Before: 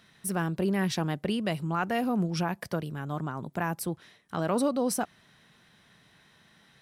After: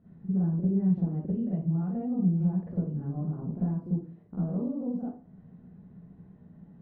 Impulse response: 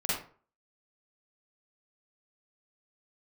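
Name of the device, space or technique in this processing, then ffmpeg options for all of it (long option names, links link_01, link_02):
television next door: -filter_complex "[0:a]acompressor=threshold=-42dB:ratio=4,lowpass=290[link_01];[1:a]atrim=start_sample=2205[link_02];[link_01][link_02]afir=irnorm=-1:irlink=0,volume=6dB"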